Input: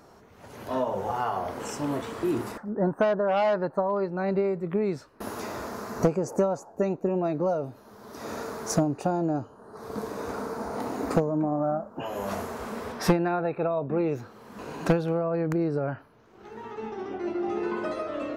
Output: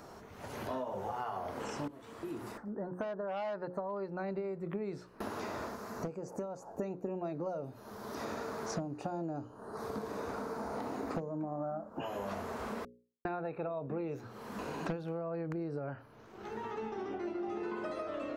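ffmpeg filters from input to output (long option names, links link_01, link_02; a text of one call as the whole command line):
ffmpeg -i in.wav -filter_complex "[0:a]asplit=6[link_01][link_02][link_03][link_04][link_05][link_06];[link_01]atrim=end=1.88,asetpts=PTS-STARTPTS,afade=type=out:start_time=1.876:duration=0.004:curve=hsin:silence=0.0944061[link_07];[link_02]atrim=start=1.88:end=5.78,asetpts=PTS-STARTPTS,afade=type=in:duration=2.58:silence=0.0944061,afade=type=out:start_time=3.77:duration=0.13:silence=0.354813[link_08];[link_03]atrim=start=5.78:end=6.58,asetpts=PTS-STARTPTS,volume=-9dB[link_09];[link_04]atrim=start=6.58:end=12.85,asetpts=PTS-STARTPTS,afade=type=in:duration=0.13:silence=0.354813,afade=type=out:start_time=6.266:duration=0.004:curve=hsin[link_10];[link_05]atrim=start=12.85:end=13.25,asetpts=PTS-STARTPTS,volume=0[link_11];[link_06]atrim=start=13.25,asetpts=PTS-STARTPTS,afade=type=in:duration=0.004:curve=hsin[link_12];[link_07][link_08][link_09][link_10][link_11][link_12]concat=n=6:v=0:a=1,acrossover=split=5300[link_13][link_14];[link_14]acompressor=threshold=-56dB:ratio=4:attack=1:release=60[link_15];[link_13][link_15]amix=inputs=2:normalize=0,bandreject=frequency=60:width_type=h:width=6,bandreject=frequency=120:width_type=h:width=6,bandreject=frequency=180:width_type=h:width=6,bandreject=frequency=240:width_type=h:width=6,bandreject=frequency=300:width_type=h:width=6,bandreject=frequency=360:width_type=h:width=6,bandreject=frequency=420:width_type=h:width=6,bandreject=frequency=480:width_type=h:width=6,bandreject=frequency=540:width_type=h:width=6,acompressor=threshold=-40dB:ratio=4,volume=2.5dB" out.wav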